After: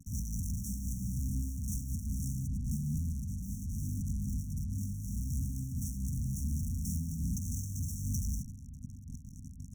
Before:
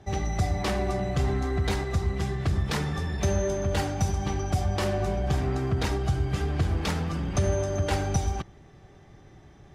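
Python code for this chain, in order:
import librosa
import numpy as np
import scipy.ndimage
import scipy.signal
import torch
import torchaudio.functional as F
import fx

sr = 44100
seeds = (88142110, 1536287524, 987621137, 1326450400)

y = fx.tilt_shelf(x, sr, db=7.5, hz=1100.0, at=(2.46, 4.99), fade=0.02)
y = fx.over_compress(y, sr, threshold_db=-23.0, ratio=-0.5)
y = fx.fuzz(y, sr, gain_db=43.0, gate_db=-44.0)
y = fx.tube_stage(y, sr, drive_db=28.0, bias=0.6)
y = fx.brickwall_bandstop(y, sr, low_hz=270.0, high_hz=5500.0)
y = fx.echo_bbd(y, sr, ms=438, stages=4096, feedback_pct=82, wet_db=-15.0)
y = fx.am_noise(y, sr, seeds[0], hz=5.7, depth_pct=60)
y = y * 10.0 ** (-2.0 / 20.0)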